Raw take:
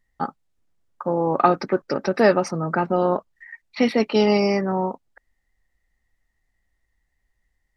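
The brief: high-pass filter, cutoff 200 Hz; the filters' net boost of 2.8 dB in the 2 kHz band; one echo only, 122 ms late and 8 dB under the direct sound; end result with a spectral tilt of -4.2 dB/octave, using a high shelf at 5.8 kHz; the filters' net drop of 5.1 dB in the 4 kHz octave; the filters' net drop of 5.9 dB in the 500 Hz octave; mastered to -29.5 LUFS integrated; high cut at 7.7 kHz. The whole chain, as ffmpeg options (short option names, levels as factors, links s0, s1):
-af "highpass=200,lowpass=7700,equalizer=f=500:t=o:g=-7.5,equalizer=f=2000:t=o:g=6,equalizer=f=4000:t=o:g=-8.5,highshelf=f=5800:g=-3,aecho=1:1:122:0.398,volume=0.531"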